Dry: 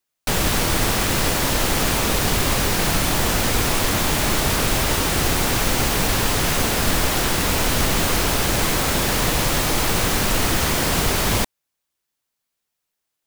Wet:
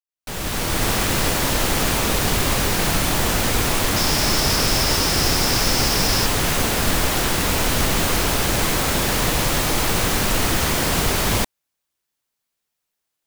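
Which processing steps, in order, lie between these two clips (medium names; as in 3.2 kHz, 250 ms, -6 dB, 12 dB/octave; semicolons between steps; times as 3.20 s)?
fade-in on the opening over 0.91 s; 3.96–6.26 s: peaking EQ 5.2 kHz +11.5 dB 0.3 oct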